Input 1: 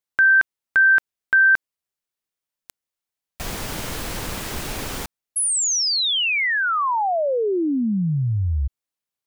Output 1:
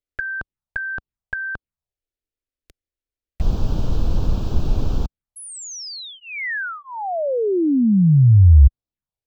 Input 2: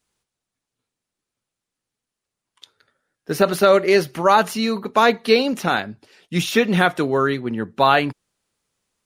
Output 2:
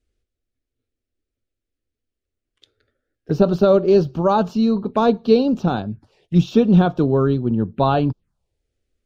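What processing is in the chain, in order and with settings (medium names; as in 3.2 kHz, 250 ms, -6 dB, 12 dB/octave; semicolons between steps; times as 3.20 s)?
RIAA curve playback; touch-sensitive phaser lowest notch 160 Hz, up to 2 kHz, full sweep at -17 dBFS; trim -1.5 dB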